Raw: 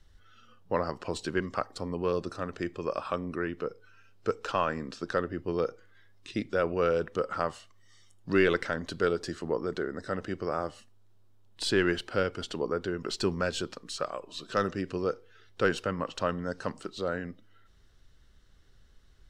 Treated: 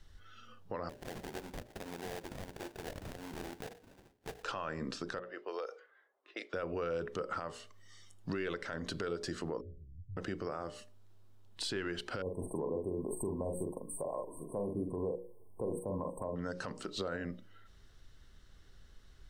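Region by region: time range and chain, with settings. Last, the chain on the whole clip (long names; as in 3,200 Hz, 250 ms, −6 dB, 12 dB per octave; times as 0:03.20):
0:00.89–0:04.44: high-pass filter 610 Hz 6 dB per octave + sample-rate reduction 1,200 Hz, jitter 20% + downward compressor 5 to 1, threshold −41 dBFS
0:05.19–0:06.54: low-pass that shuts in the quiet parts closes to 740 Hz, open at −25.5 dBFS + high-pass filter 480 Hz 24 dB per octave + downward compressor, threshold −37 dBFS
0:09.61–0:10.17: inverse Chebyshev low-pass filter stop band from 640 Hz, stop band 80 dB + comb filter 2.4 ms, depth 45%
0:12.22–0:16.36: linear-phase brick-wall band-stop 1,100–8,100 Hz + high-shelf EQ 7,100 Hz +7 dB + double-tracking delay 44 ms −5 dB
whole clip: mains-hum notches 60/120/180/240/300/360/420/480/540/600 Hz; downward compressor 5 to 1, threshold −34 dBFS; brickwall limiter −29 dBFS; level +2 dB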